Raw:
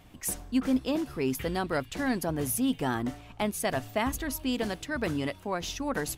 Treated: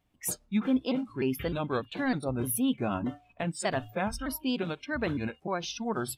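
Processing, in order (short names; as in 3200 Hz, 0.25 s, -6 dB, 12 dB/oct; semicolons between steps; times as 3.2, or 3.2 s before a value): trilling pitch shifter -3.5 st, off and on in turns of 0.304 s; spectral noise reduction 20 dB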